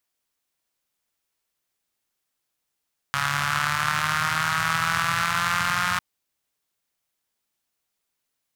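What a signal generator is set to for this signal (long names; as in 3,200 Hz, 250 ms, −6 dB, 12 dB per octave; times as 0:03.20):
pulse-train model of a four-cylinder engine, changing speed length 2.85 s, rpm 4,200, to 5,400, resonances 120/1,300 Hz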